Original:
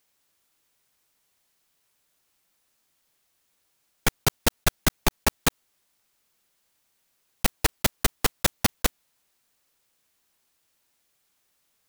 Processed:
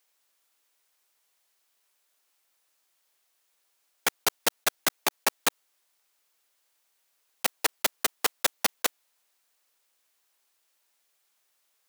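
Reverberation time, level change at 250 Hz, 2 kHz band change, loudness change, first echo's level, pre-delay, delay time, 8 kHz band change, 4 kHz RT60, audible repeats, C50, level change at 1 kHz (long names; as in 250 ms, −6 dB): no reverb audible, −11.5 dB, −1.0 dB, −2.0 dB, no echo audible, no reverb audible, no echo audible, −1.0 dB, no reverb audible, no echo audible, no reverb audible, −1.0 dB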